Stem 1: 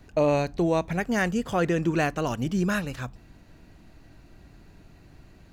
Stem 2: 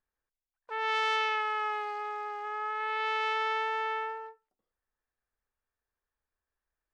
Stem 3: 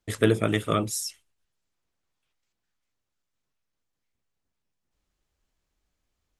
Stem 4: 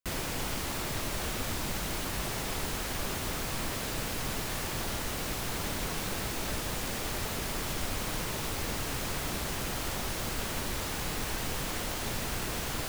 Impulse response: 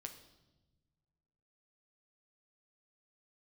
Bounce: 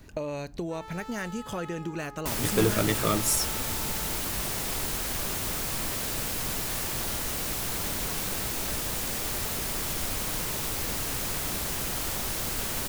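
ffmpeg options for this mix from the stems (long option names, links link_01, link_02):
-filter_complex "[0:a]bandreject=frequency=740:width=12,acompressor=threshold=-33dB:ratio=5,volume=1dB[link_01];[1:a]lowpass=1600,asoftclip=type=hard:threshold=-30.5dB,volume=-9.5dB[link_02];[2:a]asoftclip=type=tanh:threshold=-15dB,adelay=2350,volume=-0.5dB[link_03];[3:a]adelay=2200,volume=0dB[link_04];[link_01][link_02][link_03][link_04]amix=inputs=4:normalize=0,highshelf=frequency=6300:gain=9"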